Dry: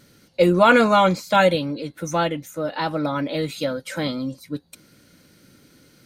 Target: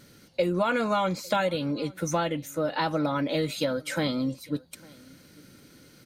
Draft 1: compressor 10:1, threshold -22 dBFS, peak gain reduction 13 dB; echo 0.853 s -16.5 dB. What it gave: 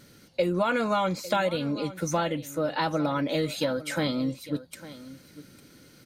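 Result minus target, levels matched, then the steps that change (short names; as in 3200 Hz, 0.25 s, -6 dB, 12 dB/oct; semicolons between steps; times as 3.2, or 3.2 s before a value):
echo-to-direct +8.5 dB
change: echo 0.853 s -25 dB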